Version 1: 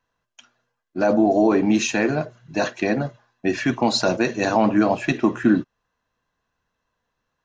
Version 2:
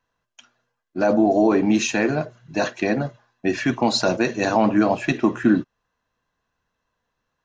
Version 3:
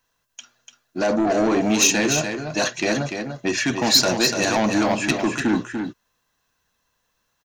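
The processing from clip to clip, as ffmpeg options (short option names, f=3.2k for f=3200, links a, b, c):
-af anull
-af "asoftclip=type=tanh:threshold=-15dB,crystalizer=i=4:c=0,aecho=1:1:293:0.473"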